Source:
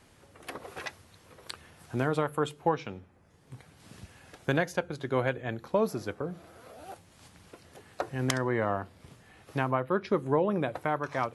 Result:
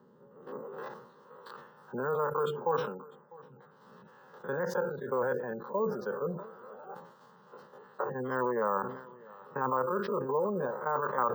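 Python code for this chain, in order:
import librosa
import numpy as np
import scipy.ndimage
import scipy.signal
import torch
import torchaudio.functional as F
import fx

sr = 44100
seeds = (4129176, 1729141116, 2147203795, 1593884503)

p1 = fx.spec_steps(x, sr, hold_ms=50)
p2 = scipy.signal.sosfilt(scipy.signal.butter(4, 93.0, 'highpass', fs=sr, output='sos'), p1)
p3 = fx.spec_gate(p2, sr, threshold_db=-25, keep='strong')
p4 = fx.high_shelf(p3, sr, hz=6500.0, db=-7.5)
p5 = fx.over_compress(p4, sr, threshold_db=-31.0, ratio=-0.5)
p6 = p4 + (p5 * librosa.db_to_amplitude(1.5))
p7 = fx.filter_sweep_bandpass(p6, sr, from_hz=330.0, to_hz=830.0, start_s=0.56, end_s=1.22, q=0.78)
p8 = fx.fixed_phaser(p7, sr, hz=460.0, stages=8)
p9 = p8 + fx.echo_single(p8, sr, ms=650, db=-22.0, dry=0)
p10 = np.repeat(p9[::2], 2)[:len(p9)]
y = fx.sustainer(p10, sr, db_per_s=73.0)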